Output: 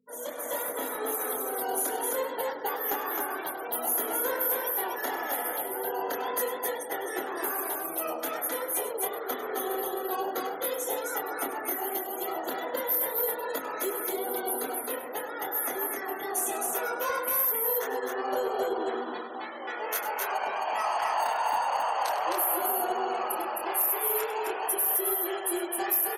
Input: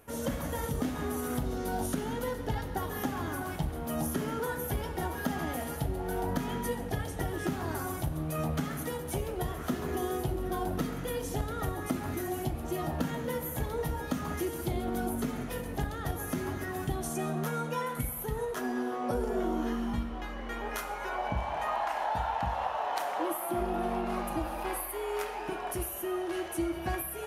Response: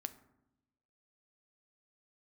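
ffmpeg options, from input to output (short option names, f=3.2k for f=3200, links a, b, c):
-filter_complex "[0:a]flanger=delay=22.5:depth=7.2:speed=2.4,asetrate=45938,aresample=44100,asplit=2[a][b];[b]acrusher=samples=12:mix=1:aa=0.000001,volume=-9dB[c];[a][c]amix=inputs=2:normalize=0,afftfilt=real='re*gte(hypot(re,im),0.00562)':imag='im*gte(hypot(re,im),0.00562)':win_size=1024:overlap=0.75,aemphasis=mode=production:type=50fm,aecho=1:1:99.13|262.4:0.251|0.708,aeval=exprs='val(0)+0.00794*(sin(2*PI*50*n/s)+sin(2*PI*2*50*n/s)/2+sin(2*PI*3*50*n/s)/3+sin(2*PI*4*50*n/s)/4+sin(2*PI*5*50*n/s)/5)':c=same,highpass=f=400:w=0.5412,highpass=f=400:w=1.3066,dynaudnorm=f=190:g=5:m=5.5dB,asoftclip=type=tanh:threshold=-15.5dB,volume=-1.5dB"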